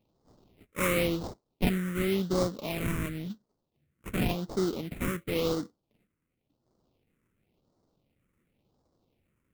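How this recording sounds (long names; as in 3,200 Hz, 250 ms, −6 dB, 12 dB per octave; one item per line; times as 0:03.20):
aliases and images of a low sample rate 1,700 Hz, jitter 20%
phaser sweep stages 4, 0.93 Hz, lowest notch 730–2,500 Hz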